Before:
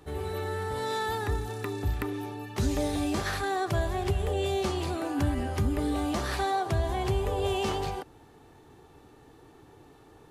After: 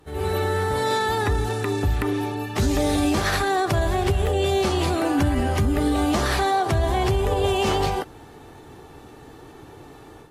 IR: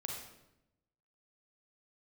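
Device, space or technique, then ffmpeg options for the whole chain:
low-bitrate web radio: -filter_complex "[0:a]asettb=1/sr,asplit=3[a][b][c];[a]atrim=end=0.944[d];[b]atrim=start=0.94:end=2.37,asetpts=PTS-STARTPTS,afade=t=in:d=0.004:c=qsin,afade=t=out:st=1.426:d=0.004:c=qsin,lowpass=12k[e];[c]atrim=start=2.366[f];[d][e]acrossfade=d=0.004:c1=hsin:c2=qsin[g];[g][f]acrossfade=d=0.004:c1=qsin:c2=hsin,dynaudnorm=f=120:g=3:m=10dB,alimiter=limit=-13.5dB:level=0:latency=1:release=61" -ar 44100 -c:a aac -b:a 48k

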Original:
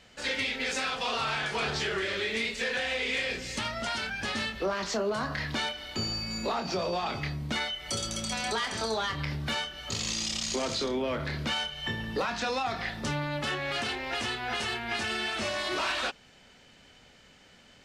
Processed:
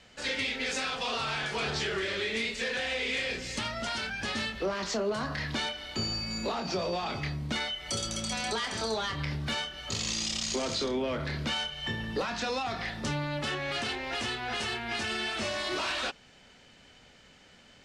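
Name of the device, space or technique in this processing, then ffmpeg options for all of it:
one-band saturation: -filter_complex "[0:a]acrossover=split=530|2600[a][b][c];[b]asoftclip=type=tanh:threshold=-31.5dB[d];[a][d][c]amix=inputs=3:normalize=0,lowpass=11k"

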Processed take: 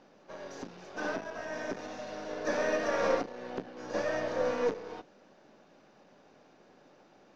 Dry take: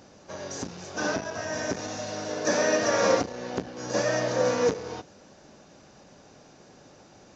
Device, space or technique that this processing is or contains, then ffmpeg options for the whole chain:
crystal radio: -af "highpass=200,lowpass=3.4k,aeval=exprs='if(lt(val(0),0),0.708*val(0),val(0))':c=same,volume=-4.5dB"

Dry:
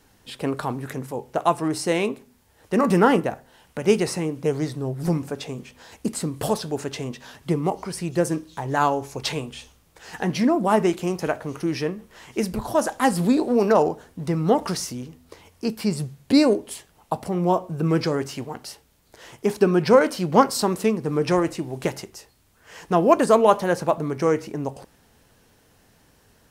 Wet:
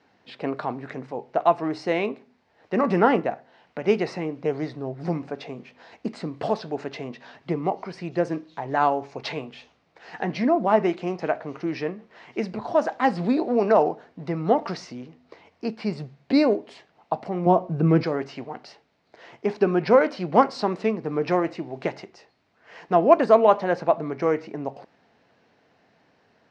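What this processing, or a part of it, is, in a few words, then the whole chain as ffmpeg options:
kitchen radio: -filter_complex "[0:a]asettb=1/sr,asplit=3[a][b][c];[a]atrim=end=17.464[d];[b]atrim=start=17.46:end=18.03,asetpts=PTS-STARTPTS,afade=t=in:d=0.004:c=qsin,afade=t=out:st=0.566:d=0.004:c=qsin,lowshelf=f=270:g=12[e];[c]atrim=start=18.026[f];[d][e]acrossfade=d=0.004:c1=hsin:c2=qsin[g];[g][f]acrossfade=d=0.004:c1=qsin:c2=hsin,highpass=170,equalizer=f=690:t=q:w=4:g=6,equalizer=f=2.1k:t=q:w=4:g=3,equalizer=f=3.3k:t=q:w=4:g=-5,lowpass=f=4.4k:w=0.5412,lowpass=f=4.4k:w=1.3066,volume=-2.5dB"

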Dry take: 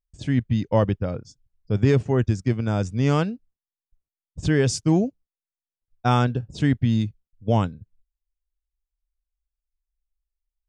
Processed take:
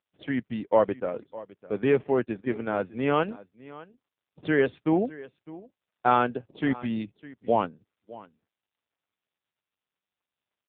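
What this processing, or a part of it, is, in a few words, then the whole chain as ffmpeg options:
satellite phone: -af "highpass=370,lowpass=3.1k,aecho=1:1:607:0.112,volume=2.5dB" -ar 8000 -c:a libopencore_amrnb -b:a 5900

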